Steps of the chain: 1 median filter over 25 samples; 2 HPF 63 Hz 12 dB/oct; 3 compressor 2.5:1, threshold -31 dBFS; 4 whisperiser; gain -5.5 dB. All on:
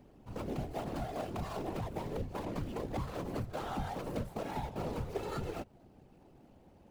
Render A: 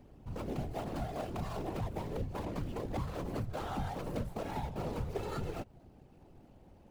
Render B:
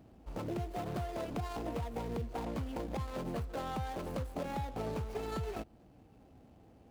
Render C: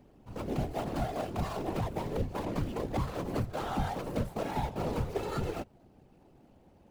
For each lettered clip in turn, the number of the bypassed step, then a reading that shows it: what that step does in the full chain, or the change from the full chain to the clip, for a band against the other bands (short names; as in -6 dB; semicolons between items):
2, 125 Hz band +2.0 dB; 4, crest factor change -4.0 dB; 3, loudness change +4.5 LU